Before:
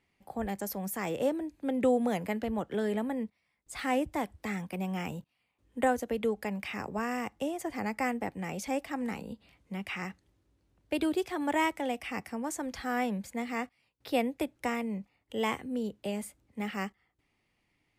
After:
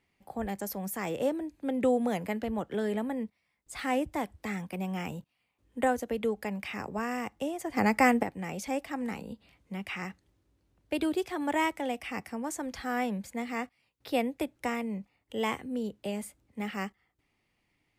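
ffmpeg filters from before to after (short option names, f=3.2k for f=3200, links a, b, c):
-filter_complex "[0:a]asplit=3[a][b][c];[a]atrim=end=7.772[d];[b]atrim=start=7.768:end=8.232,asetpts=PTS-STARTPTS,volume=8.5dB[e];[c]atrim=start=8.228[f];[d][e]acrossfade=d=0.004:c1=hsin:c2=hsin[g];[g][f]acrossfade=d=0.004:c1=hsin:c2=hsin"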